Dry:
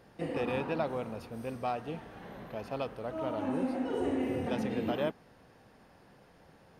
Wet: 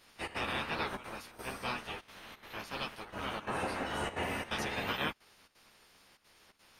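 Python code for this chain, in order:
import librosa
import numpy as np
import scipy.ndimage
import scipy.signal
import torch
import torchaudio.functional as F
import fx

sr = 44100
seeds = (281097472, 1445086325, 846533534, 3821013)

y = fx.spec_clip(x, sr, under_db=26)
y = fx.step_gate(y, sr, bpm=173, pattern='xxx.xxxxxxx.', floor_db=-12.0, edge_ms=4.5)
y = fx.ensemble(y, sr)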